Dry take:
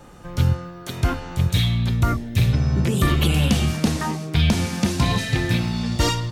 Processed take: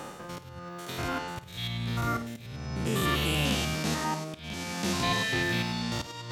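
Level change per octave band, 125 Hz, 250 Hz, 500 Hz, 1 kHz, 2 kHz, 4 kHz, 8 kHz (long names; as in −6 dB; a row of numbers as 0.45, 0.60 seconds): −14.0, −10.0, −6.0, −4.0, −3.0, −5.0, −5.5 decibels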